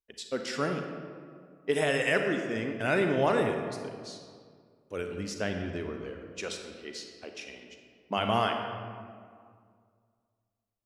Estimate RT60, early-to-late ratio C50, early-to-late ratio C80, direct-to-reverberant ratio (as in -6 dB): 2.1 s, 4.5 dB, 6.0 dB, 4.0 dB